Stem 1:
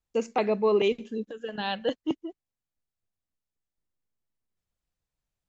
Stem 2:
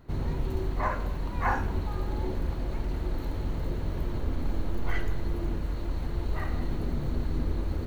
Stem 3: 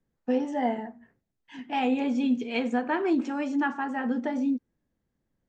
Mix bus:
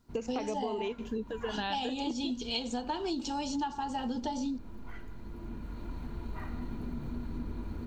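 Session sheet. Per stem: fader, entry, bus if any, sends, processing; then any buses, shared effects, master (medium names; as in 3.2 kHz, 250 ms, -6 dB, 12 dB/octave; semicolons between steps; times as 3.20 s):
+2.5 dB, 0.00 s, bus A, no send, none
5.09 s -17 dB -> 5.83 s -9.5 dB, 0.00 s, bus A, no send, small resonant body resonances 230/980/1400/2400 Hz, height 10 dB
-2.5 dB, 0.00 s, no bus, no send, resonant high shelf 2.9 kHz +13.5 dB, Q 3; small resonant body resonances 870/2900 Hz, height 13 dB
bus A: 0.0 dB, band-stop 540 Hz, Q 12; compression, threshold -24 dBFS, peak gain reduction 8 dB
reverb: none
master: compression 6:1, threshold -31 dBFS, peak gain reduction 11 dB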